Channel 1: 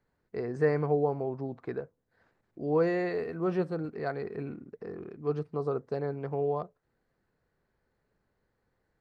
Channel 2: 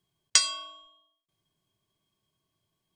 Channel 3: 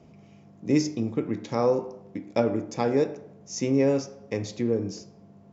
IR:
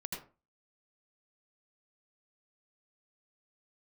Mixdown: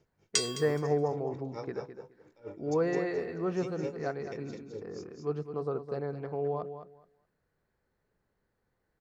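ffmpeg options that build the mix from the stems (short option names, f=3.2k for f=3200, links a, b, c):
-filter_complex "[0:a]volume=-2.5dB,asplit=2[a][b];[b]volume=-10dB[c];[1:a]highpass=950,acrusher=bits=7:mix=0:aa=0.000001,volume=-7.5dB,asplit=2[d][e];[e]volume=-16dB[f];[2:a]highshelf=f=3.3k:g=7.5,aecho=1:1:2.2:0.65,aeval=exprs='val(0)*pow(10,-29*(0.5-0.5*cos(2*PI*4.4*n/s))/20)':c=same,volume=-14dB,asplit=2[g][h];[h]volume=-4.5dB[i];[c][f][i]amix=inputs=3:normalize=0,aecho=0:1:211|422|633:1|0.18|0.0324[j];[a][d][g][j]amix=inputs=4:normalize=0"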